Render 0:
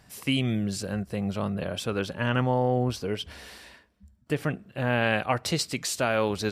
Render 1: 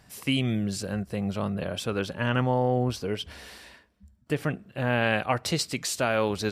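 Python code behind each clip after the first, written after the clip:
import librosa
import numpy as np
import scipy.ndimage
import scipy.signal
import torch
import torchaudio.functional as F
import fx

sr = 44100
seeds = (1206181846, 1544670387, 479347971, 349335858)

y = x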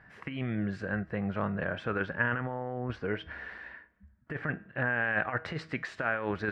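y = fx.over_compress(x, sr, threshold_db=-27.0, ratio=-0.5)
y = fx.lowpass_res(y, sr, hz=1700.0, q=3.9)
y = fx.comb_fb(y, sr, f0_hz=160.0, decay_s=0.45, harmonics='all', damping=0.0, mix_pct=50)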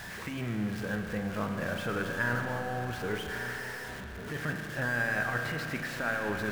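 y = x + 0.5 * 10.0 ** (-34.0 / 20.0) * np.sign(x)
y = y + 10.0 ** (-13.0 / 20.0) * np.pad(y, (int(1144 * sr / 1000.0), 0))[:len(y)]
y = fx.rev_spring(y, sr, rt60_s=3.5, pass_ms=(33,), chirp_ms=70, drr_db=4.0)
y = F.gain(torch.from_numpy(y), -4.0).numpy()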